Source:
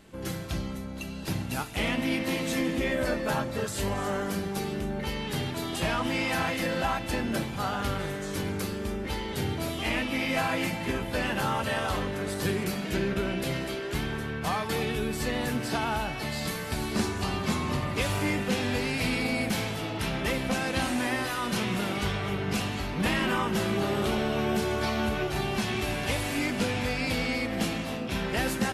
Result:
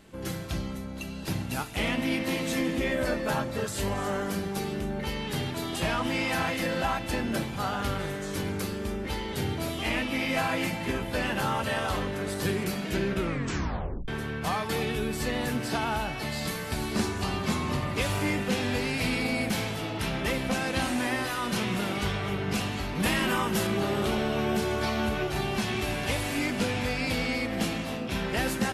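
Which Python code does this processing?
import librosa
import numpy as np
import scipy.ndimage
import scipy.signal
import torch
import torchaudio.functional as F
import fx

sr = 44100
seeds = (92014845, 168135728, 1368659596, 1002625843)

y = fx.high_shelf(x, sr, hz=7000.0, db=9.5, at=(22.95, 23.67))
y = fx.edit(y, sr, fx.tape_stop(start_s=13.16, length_s=0.92), tone=tone)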